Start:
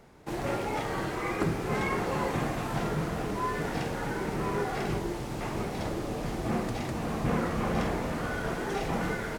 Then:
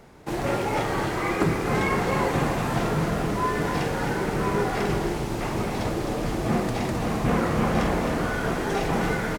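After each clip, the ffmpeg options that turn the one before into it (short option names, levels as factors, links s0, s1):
-af "aecho=1:1:263:0.422,volume=1.88"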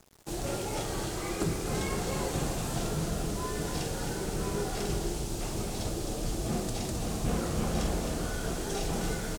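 -af "equalizer=f=125:t=o:w=1:g=-6,equalizer=f=250:t=o:w=1:g=-7,equalizer=f=500:t=o:w=1:g=-5,equalizer=f=1000:t=o:w=1:g=-10,equalizer=f=2000:t=o:w=1:g=-12,equalizer=f=8000:t=o:w=1:g=5,aeval=exprs='val(0)*gte(abs(val(0)),0.00282)':c=same"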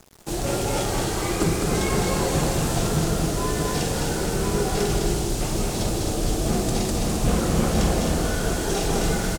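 -af "aecho=1:1:207:0.562,volume=2.51"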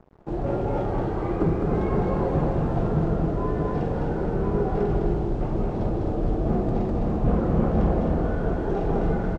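-af "lowpass=1000"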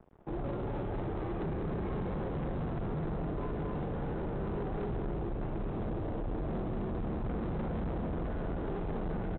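-filter_complex "[0:a]acrossover=split=370|3000[s0][s1][s2];[s1]acompressor=threshold=0.0251:ratio=6[s3];[s0][s3][s2]amix=inputs=3:normalize=0,aresample=8000,asoftclip=type=hard:threshold=0.0447,aresample=44100,volume=0.531"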